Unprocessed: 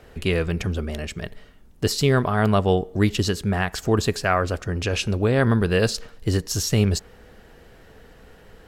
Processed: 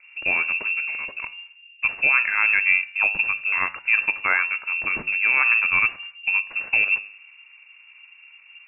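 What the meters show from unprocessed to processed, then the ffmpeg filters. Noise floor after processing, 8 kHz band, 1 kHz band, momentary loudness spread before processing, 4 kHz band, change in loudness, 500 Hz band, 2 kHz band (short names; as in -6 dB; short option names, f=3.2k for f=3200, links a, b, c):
-51 dBFS, under -40 dB, -3.0 dB, 9 LU, n/a, +2.5 dB, -20.0 dB, +12.0 dB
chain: -af "adynamicsmooth=sensitivity=4.5:basefreq=690,bandreject=f=101.4:t=h:w=4,bandreject=f=202.8:t=h:w=4,bandreject=f=304.2:t=h:w=4,bandreject=f=405.6:t=h:w=4,bandreject=f=507:t=h:w=4,bandreject=f=608.4:t=h:w=4,bandreject=f=709.8:t=h:w=4,bandreject=f=811.2:t=h:w=4,bandreject=f=912.6:t=h:w=4,bandreject=f=1.014k:t=h:w=4,bandreject=f=1.1154k:t=h:w=4,bandreject=f=1.2168k:t=h:w=4,bandreject=f=1.3182k:t=h:w=4,bandreject=f=1.4196k:t=h:w=4,bandreject=f=1.521k:t=h:w=4,bandreject=f=1.6224k:t=h:w=4,bandreject=f=1.7238k:t=h:w=4,bandreject=f=1.8252k:t=h:w=4,bandreject=f=1.9266k:t=h:w=4,bandreject=f=2.028k:t=h:w=4,bandreject=f=2.1294k:t=h:w=4,bandreject=f=2.2308k:t=h:w=4,bandreject=f=2.3322k:t=h:w=4,bandreject=f=2.4336k:t=h:w=4,bandreject=f=2.535k:t=h:w=4,bandreject=f=2.6364k:t=h:w=4,bandreject=f=2.7378k:t=h:w=4,bandreject=f=2.8392k:t=h:w=4,bandreject=f=2.9406k:t=h:w=4,lowpass=f=2.4k:t=q:w=0.5098,lowpass=f=2.4k:t=q:w=0.6013,lowpass=f=2.4k:t=q:w=0.9,lowpass=f=2.4k:t=q:w=2.563,afreqshift=-2800"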